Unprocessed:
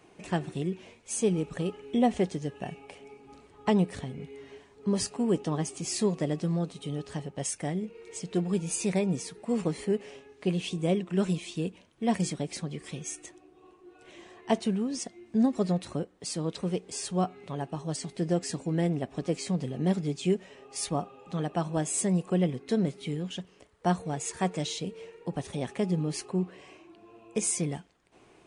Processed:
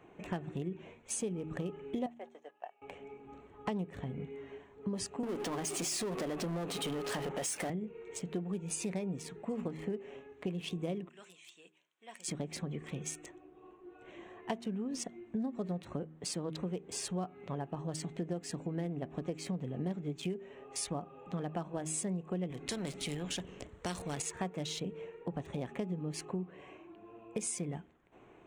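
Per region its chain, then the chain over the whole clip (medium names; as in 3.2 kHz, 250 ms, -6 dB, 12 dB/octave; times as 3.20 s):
2.06–2.82 s: gate -36 dBFS, range -11 dB + ladder high-pass 570 Hz, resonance 40%
5.23–7.70 s: Bessel high-pass 360 Hz + power-law waveshaper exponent 0.5 + compression 2:1, threshold -31 dBFS
11.09–12.28 s: high-pass 350 Hz 6 dB/octave + differentiator
22.50–24.22 s: peaking EQ 1.2 kHz -10.5 dB 2.9 oct + spectrum-flattening compressor 2:1
whole clip: local Wiener filter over 9 samples; de-hum 78.72 Hz, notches 5; compression, threshold -34 dBFS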